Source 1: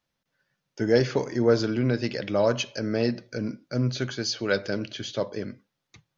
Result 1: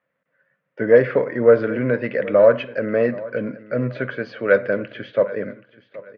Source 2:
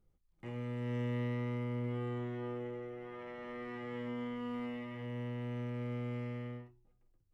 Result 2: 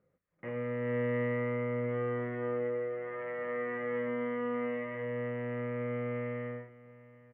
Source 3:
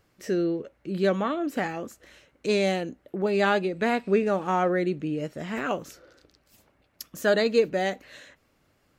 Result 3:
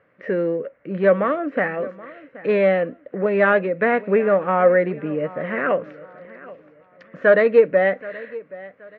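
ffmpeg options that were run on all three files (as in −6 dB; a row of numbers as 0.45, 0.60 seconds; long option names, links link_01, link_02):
-filter_complex "[0:a]asplit=2[link_01][link_02];[link_02]aeval=exprs='clip(val(0),-1,0.0562)':channel_layout=same,volume=-8dB[link_03];[link_01][link_03]amix=inputs=2:normalize=0,highpass=200,equalizer=frequency=230:width_type=q:width=4:gain=-4,equalizer=frequency=350:width_type=q:width=4:gain=-9,equalizer=frequency=530:width_type=q:width=4:gain=7,equalizer=frequency=840:width_type=q:width=4:gain=-9,equalizer=frequency=1900:width_type=q:width=4:gain=4,lowpass=frequency=2100:width=0.5412,lowpass=frequency=2100:width=1.3066,aecho=1:1:776|1552|2328:0.112|0.0359|0.0115,volume=5.5dB"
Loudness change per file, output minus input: +7.0, +5.5, +7.0 LU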